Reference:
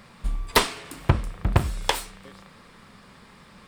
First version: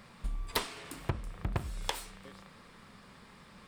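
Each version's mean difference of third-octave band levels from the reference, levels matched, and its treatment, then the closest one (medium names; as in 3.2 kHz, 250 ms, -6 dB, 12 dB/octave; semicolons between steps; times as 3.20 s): 5.5 dB: compression 3:1, threshold -27 dBFS, peak gain reduction 11 dB; trim -5 dB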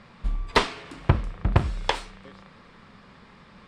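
3.0 dB: distance through air 110 m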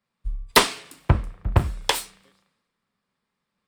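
12.5 dB: three bands expanded up and down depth 100%; trim -4.5 dB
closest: second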